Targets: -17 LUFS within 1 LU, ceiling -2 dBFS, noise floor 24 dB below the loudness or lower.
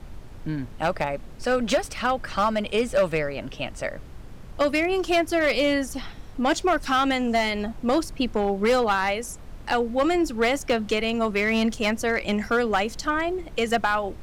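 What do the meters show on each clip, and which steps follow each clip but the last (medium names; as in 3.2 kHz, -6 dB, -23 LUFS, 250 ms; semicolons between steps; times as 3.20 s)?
clipped samples 1.3%; clipping level -15.0 dBFS; noise floor -42 dBFS; noise floor target -49 dBFS; loudness -24.5 LUFS; peak level -15.0 dBFS; loudness target -17.0 LUFS
-> clip repair -15 dBFS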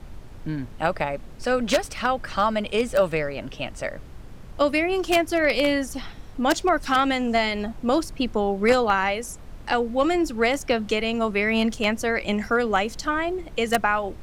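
clipped samples 0.0%; noise floor -42 dBFS; noise floor target -48 dBFS
-> noise print and reduce 6 dB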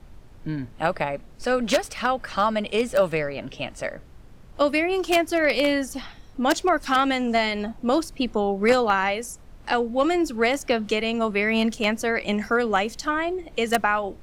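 noise floor -47 dBFS; noise floor target -48 dBFS
-> noise print and reduce 6 dB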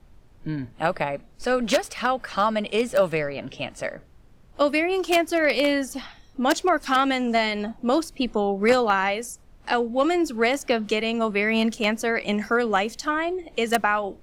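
noise floor -52 dBFS; loudness -23.5 LUFS; peak level -6.0 dBFS; loudness target -17.0 LUFS
-> trim +6.5 dB; peak limiter -2 dBFS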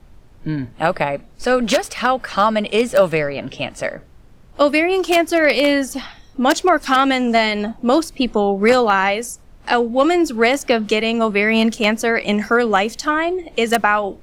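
loudness -17.5 LUFS; peak level -2.0 dBFS; noise floor -45 dBFS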